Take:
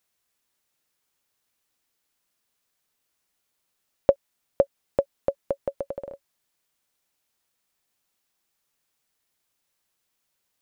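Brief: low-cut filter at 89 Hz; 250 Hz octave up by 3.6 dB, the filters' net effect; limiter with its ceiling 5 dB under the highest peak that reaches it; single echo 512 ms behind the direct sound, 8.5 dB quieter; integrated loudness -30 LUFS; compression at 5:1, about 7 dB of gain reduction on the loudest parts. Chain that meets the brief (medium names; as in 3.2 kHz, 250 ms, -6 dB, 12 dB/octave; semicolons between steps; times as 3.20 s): high-pass 89 Hz; peaking EQ 250 Hz +5 dB; compression 5:1, threshold -22 dBFS; peak limiter -11.5 dBFS; delay 512 ms -8.5 dB; trim +6 dB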